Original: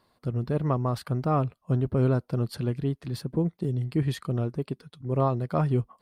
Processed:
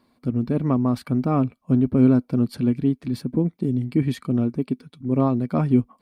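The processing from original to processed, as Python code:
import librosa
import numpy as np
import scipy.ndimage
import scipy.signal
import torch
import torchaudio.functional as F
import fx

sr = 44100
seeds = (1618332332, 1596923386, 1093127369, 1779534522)

y = fx.small_body(x, sr, hz=(250.0, 2300.0), ring_ms=45, db=14)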